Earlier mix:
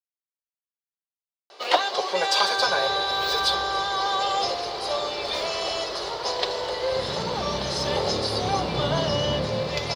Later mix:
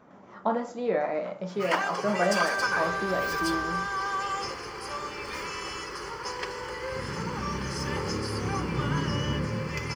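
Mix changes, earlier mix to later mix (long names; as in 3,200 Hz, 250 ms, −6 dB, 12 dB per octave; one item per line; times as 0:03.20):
speech: unmuted
first sound: add phaser with its sweep stopped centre 1,600 Hz, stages 4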